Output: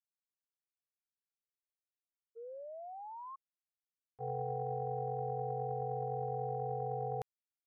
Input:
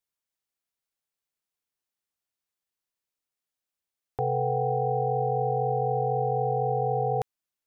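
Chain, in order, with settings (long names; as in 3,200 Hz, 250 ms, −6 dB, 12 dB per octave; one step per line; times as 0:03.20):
sound drawn into the spectrogram rise, 0:02.35–0:03.36, 450–1,100 Hz −28 dBFS
downward expander −16 dBFS
level +1.5 dB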